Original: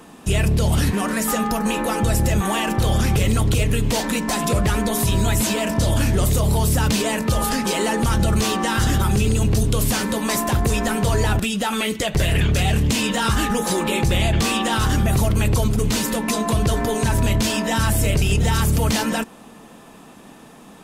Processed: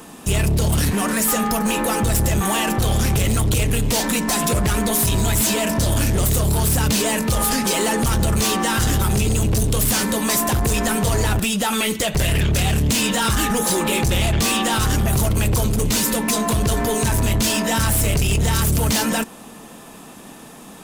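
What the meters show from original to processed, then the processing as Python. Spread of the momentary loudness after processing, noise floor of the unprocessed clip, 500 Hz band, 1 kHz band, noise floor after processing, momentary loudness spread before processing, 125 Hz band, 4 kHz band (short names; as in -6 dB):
2 LU, -44 dBFS, 0.0 dB, +0.5 dB, -40 dBFS, 3 LU, -0.5 dB, +2.0 dB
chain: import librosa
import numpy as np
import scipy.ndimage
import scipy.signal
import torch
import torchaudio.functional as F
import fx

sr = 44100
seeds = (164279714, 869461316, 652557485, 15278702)

y = fx.high_shelf(x, sr, hz=5900.0, db=8.5)
y = 10.0 ** (-17.0 / 20.0) * np.tanh(y / 10.0 ** (-17.0 / 20.0))
y = F.gain(torch.from_numpy(y), 3.0).numpy()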